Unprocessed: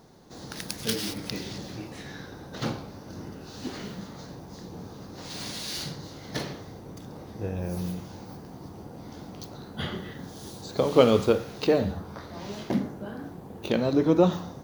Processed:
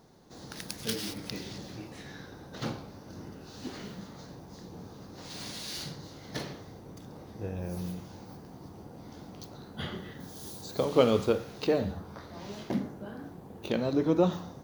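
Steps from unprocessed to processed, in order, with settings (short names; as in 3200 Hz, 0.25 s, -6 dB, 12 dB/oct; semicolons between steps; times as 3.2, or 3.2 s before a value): 10.2–10.85 high shelf 8200 Hz +10.5 dB; gain -4.5 dB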